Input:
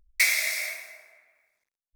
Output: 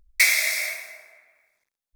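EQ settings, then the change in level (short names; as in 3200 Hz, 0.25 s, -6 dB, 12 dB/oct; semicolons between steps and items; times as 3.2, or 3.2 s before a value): notch 2900 Hz, Q 17; +4.0 dB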